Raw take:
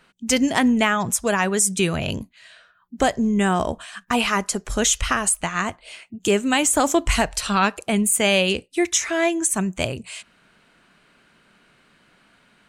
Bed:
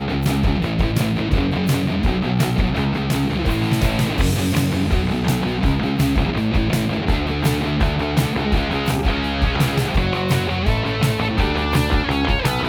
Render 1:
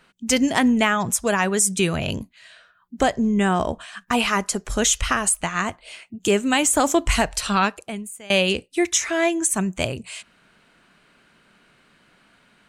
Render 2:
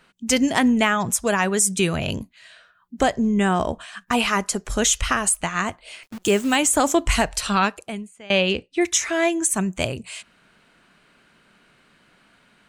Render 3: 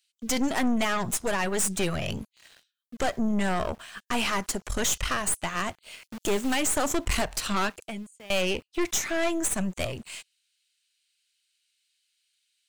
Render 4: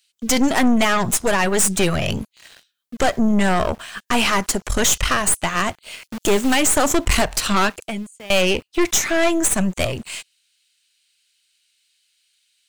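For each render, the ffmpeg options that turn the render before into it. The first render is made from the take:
ffmpeg -i in.wav -filter_complex "[0:a]asettb=1/sr,asplit=3[link_01][link_02][link_03];[link_01]atrim=end=3.034[link_04];[link_02]atrim=start=3.03:end=4,asetpts=PTS-STARTPTS,afade=type=in:duration=0.004:curve=qsin,afade=type=out:start_time=0.966:duration=0.004:curve=qsin,highshelf=frequency=8500:gain=-8[link_05];[link_03]atrim=start=3.996[link_06];[link_04][link_05]acrossfade=duration=0.004:curve1=hsin:curve2=qsin[link_07];[link_07][link_06]acrossfade=duration=0.004:curve1=qsin:curve2=hsin,asplit=2[link_08][link_09];[link_08]atrim=end=8.3,asetpts=PTS-STARTPTS,afade=type=out:start_time=7.59:duration=0.71:curve=qua:silence=0.0749894[link_10];[link_09]atrim=start=8.3,asetpts=PTS-STARTPTS,afade=type=in:duration=0.004:curve=hsin:silence=0.0749894[link_11];[link_10][link_11]concat=n=2:v=0:a=1" out.wav
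ffmpeg -i in.wav -filter_complex "[0:a]asettb=1/sr,asplit=3[link_01][link_02][link_03];[link_01]atrim=end=6.034[link_04];[link_02]atrim=start=6.03:end=6.56,asetpts=PTS-STARTPTS,afade=type=in:duration=0.004:curve=qsin,afade=type=out:start_time=0.526:duration=0.004:curve=qsin,acrusher=bits=7:dc=4:mix=0:aa=0.000001[link_05];[link_03]atrim=start=6.556[link_06];[link_04][link_05]acrossfade=duration=0.004:curve1=hsin:curve2=qsin[link_07];[link_07][link_06]acrossfade=duration=0.004:curve1=qsin:curve2=hsin,asplit=3[link_08][link_09][link_10];[link_08]afade=type=out:start_time=8.04:duration=0.02[link_11];[link_09]lowpass=4200,afade=type=in:start_time=8.04:duration=0.02,afade=type=out:start_time=8.8:duration=0.02[link_12];[link_10]afade=type=in:start_time=8.8:duration=0.02[link_13];[link_11][link_12][link_13]amix=inputs=3:normalize=0" out.wav
ffmpeg -i in.wav -filter_complex "[0:a]aeval=exprs='(tanh(12.6*val(0)+0.75)-tanh(0.75))/12.6':channel_layout=same,acrossover=split=3400[link_01][link_02];[link_01]aeval=exprs='val(0)*gte(abs(val(0)),0.00335)':channel_layout=same[link_03];[link_03][link_02]amix=inputs=2:normalize=0" out.wav
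ffmpeg -i in.wav -af "volume=9dB" out.wav

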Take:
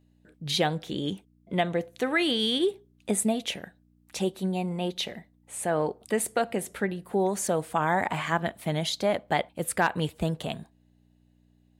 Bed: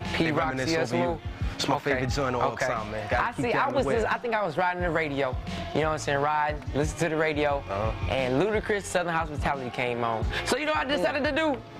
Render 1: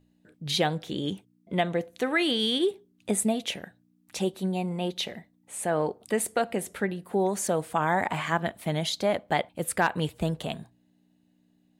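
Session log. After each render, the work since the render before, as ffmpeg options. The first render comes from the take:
ffmpeg -i in.wav -af "bandreject=frequency=60:width_type=h:width=4,bandreject=frequency=120:width_type=h:width=4" out.wav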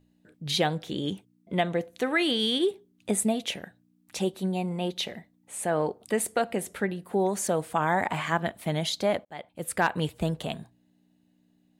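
ffmpeg -i in.wav -filter_complex "[0:a]asplit=2[link_01][link_02];[link_01]atrim=end=9.25,asetpts=PTS-STARTPTS,afade=type=out:start_time=9.246:duration=0.004:curve=hsin[link_03];[link_02]atrim=start=9.25,asetpts=PTS-STARTPTS,afade=type=in:duration=0.6[link_04];[link_03][link_04]concat=n=2:v=0:a=1" out.wav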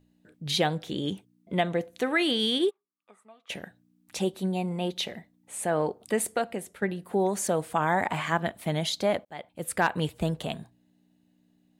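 ffmpeg -i in.wav -filter_complex "[0:a]asplit=3[link_01][link_02][link_03];[link_01]afade=type=out:start_time=2.69:duration=0.02[link_04];[link_02]bandpass=frequency=1200:width_type=q:width=11,afade=type=in:start_time=2.69:duration=0.02,afade=type=out:start_time=3.49:duration=0.02[link_05];[link_03]afade=type=in:start_time=3.49:duration=0.02[link_06];[link_04][link_05][link_06]amix=inputs=3:normalize=0,asplit=2[link_07][link_08];[link_07]atrim=end=6.82,asetpts=PTS-STARTPTS,afade=type=out:start_time=6.23:duration=0.59:silence=0.298538[link_09];[link_08]atrim=start=6.82,asetpts=PTS-STARTPTS,afade=type=in:duration=0.004:curve=hsin:silence=0.298538[link_10];[link_09][link_10]concat=n=2:v=0:a=1" out.wav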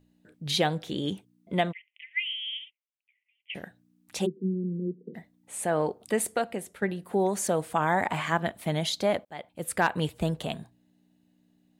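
ffmpeg -i in.wav -filter_complex "[0:a]asplit=3[link_01][link_02][link_03];[link_01]afade=type=out:start_time=1.71:duration=0.02[link_04];[link_02]asuperpass=centerf=2500:order=12:qfactor=2.1,afade=type=in:start_time=1.71:duration=0.02,afade=type=out:start_time=3.54:duration=0.02[link_05];[link_03]afade=type=in:start_time=3.54:duration=0.02[link_06];[link_04][link_05][link_06]amix=inputs=3:normalize=0,asplit=3[link_07][link_08][link_09];[link_07]afade=type=out:start_time=4.25:duration=0.02[link_10];[link_08]asuperpass=centerf=260:order=20:qfactor=0.79,afade=type=in:start_time=4.25:duration=0.02,afade=type=out:start_time=5.14:duration=0.02[link_11];[link_09]afade=type=in:start_time=5.14:duration=0.02[link_12];[link_10][link_11][link_12]amix=inputs=3:normalize=0" out.wav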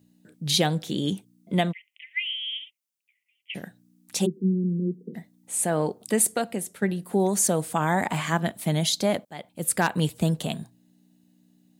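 ffmpeg -i in.wav -af "highpass=180,bass=frequency=250:gain=12,treble=frequency=4000:gain=10" out.wav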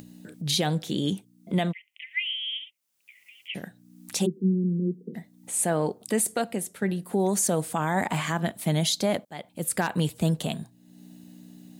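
ffmpeg -i in.wav -af "alimiter=limit=-15dB:level=0:latency=1:release=35,acompressor=mode=upward:threshold=-34dB:ratio=2.5" out.wav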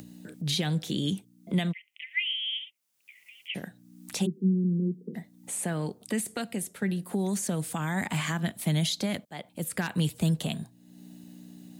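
ffmpeg -i in.wav -filter_complex "[0:a]acrossover=split=270|1500|3400[link_01][link_02][link_03][link_04];[link_02]acompressor=threshold=-37dB:ratio=6[link_05];[link_04]alimiter=level_in=0.5dB:limit=-24dB:level=0:latency=1:release=204,volume=-0.5dB[link_06];[link_01][link_05][link_03][link_06]amix=inputs=4:normalize=0" out.wav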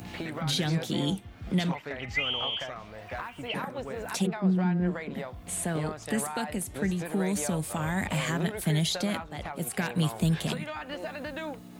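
ffmpeg -i in.wav -i bed.wav -filter_complex "[1:a]volume=-11.5dB[link_01];[0:a][link_01]amix=inputs=2:normalize=0" out.wav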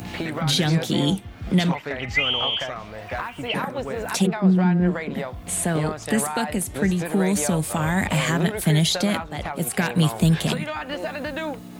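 ffmpeg -i in.wav -af "volume=7.5dB" out.wav

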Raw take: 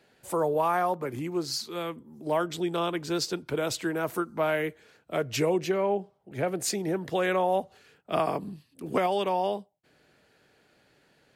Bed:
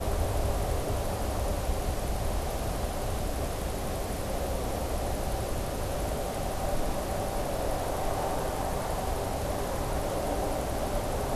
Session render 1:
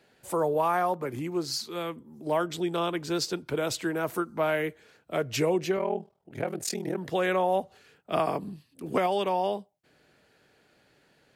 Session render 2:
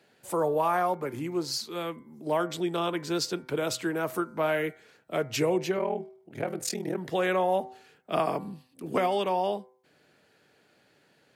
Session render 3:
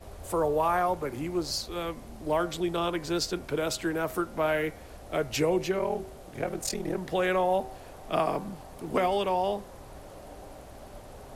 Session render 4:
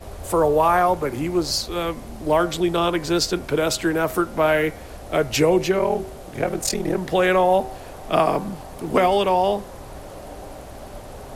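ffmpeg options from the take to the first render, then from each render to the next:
ffmpeg -i in.wav -filter_complex "[0:a]asettb=1/sr,asplit=3[link_01][link_02][link_03];[link_01]atrim=end=5.774[link_04];[link_02]atrim=start=5.77:end=6.98,asetpts=PTS-STARTPTS,afade=type=in:duration=0.004:curve=qsin,afade=type=out:start_time=1.206:duration=0.004:curve=qsin,aeval=exprs='val(0)*sin(2*PI*20*n/s)':channel_layout=same[link_05];[link_03]atrim=start=6.976[link_06];[link_04][link_05]acrossfade=duration=0.004:curve1=hsin:curve2=qsin[link_07];[link_07][link_06]acrossfade=duration=0.004:curve1=qsin:curve2=hsin" out.wav
ffmpeg -i in.wav -af "highpass=100,bandreject=frequency=127.4:width_type=h:width=4,bandreject=frequency=254.8:width_type=h:width=4,bandreject=frequency=382.2:width_type=h:width=4,bandreject=frequency=509.6:width_type=h:width=4,bandreject=frequency=637:width_type=h:width=4,bandreject=frequency=764.4:width_type=h:width=4,bandreject=frequency=891.8:width_type=h:width=4,bandreject=frequency=1019.2:width_type=h:width=4,bandreject=frequency=1146.6:width_type=h:width=4,bandreject=frequency=1274:width_type=h:width=4,bandreject=frequency=1401.4:width_type=h:width=4,bandreject=frequency=1528.8:width_type=h:width=4,bandreject=frequency=1656.2:width_type=h:width=4,bandreject=frequency=1783.6:width_type=h:width=4,bandreject=frequency=1911:width_type=h:width=4,bandreject=frequency=2038.4:width_type=h:width=4,bandreject=frequency=2165.8:width_type=h:width=4,bandreject=frequency=2293.2:width_type=h:width=4" out.wav
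ffmpeg -i in.wav -i bed.wav -filter_complex "[1:a]volume=-15.5dB[link_01];[0:a][link_01]amix=inputs=2:normalize=0" out.wav
ffmpeg -i in.wav -af "volume=8.5dB" out.wav

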